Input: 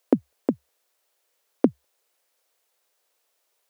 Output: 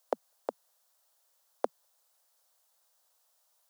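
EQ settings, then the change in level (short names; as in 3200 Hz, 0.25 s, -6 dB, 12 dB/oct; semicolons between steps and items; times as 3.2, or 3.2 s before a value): HPF 630 Hz 24 dB/oct; bell 2300 Hz -11 dB 0.97 oct; +2.0 dB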